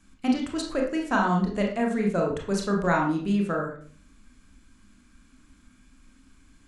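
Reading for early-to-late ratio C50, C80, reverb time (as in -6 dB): 5.0 dB, 10.0 dB, 0.45 s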